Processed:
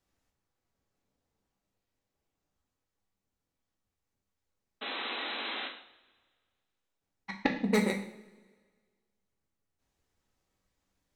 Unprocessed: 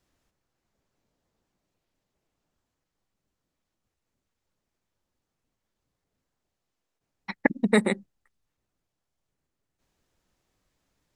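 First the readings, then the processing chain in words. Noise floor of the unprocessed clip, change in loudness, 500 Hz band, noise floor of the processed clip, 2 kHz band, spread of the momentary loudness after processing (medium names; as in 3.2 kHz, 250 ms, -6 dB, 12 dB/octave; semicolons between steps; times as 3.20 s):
-84 dBFS, -7.5 dB, -5.5 dB, under -85 dBFS, -3.5 dB, 18 LU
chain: self-modulated delay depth 0.15 ms; painted sound noise, 4.81–5.68 s, 210–4100 Hz -32 dBFS; two-slope reverb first 0.53 s, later 1.7 s, from -19 dB, DRR 1.5 dB; trim -7 dB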